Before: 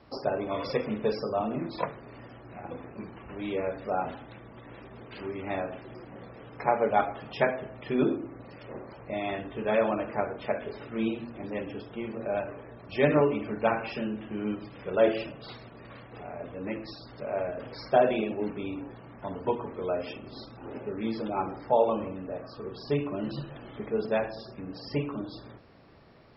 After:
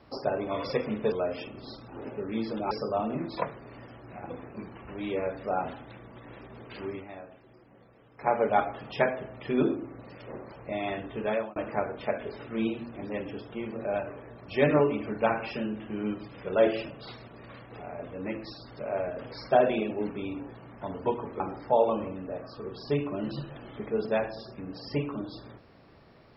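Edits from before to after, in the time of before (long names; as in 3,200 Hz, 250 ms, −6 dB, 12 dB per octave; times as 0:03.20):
0:05.35–0:06.72: duck −12 dB, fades 0.13 s
0:09.64–0:09.97: fade out
0:19.81–0:21.40: move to 0:01.12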